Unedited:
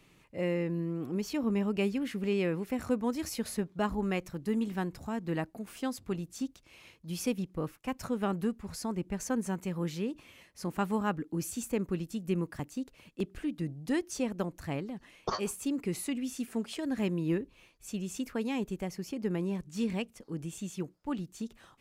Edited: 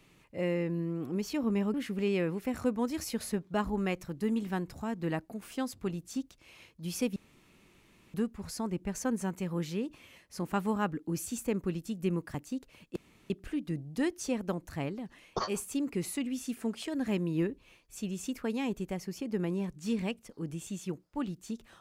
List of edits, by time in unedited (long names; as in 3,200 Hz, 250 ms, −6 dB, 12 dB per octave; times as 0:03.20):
0:01.74–0:01.99: remove
0:07.41–0:08.39: fill with room tone
0:13.21: splice in room tone 0.34 s